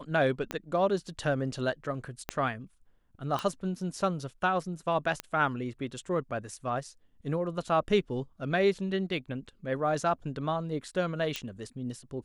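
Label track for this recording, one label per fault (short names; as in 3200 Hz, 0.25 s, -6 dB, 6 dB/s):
0.510000	0.510000	pop -18 dBFS
2.290000	2.290000	pop -15 dBFS
3.390000	3.390000	pop -18 dBFS
5.200000	5.200000	pop -16 dBFS
11.360000	11.360000	pop -17 dBFS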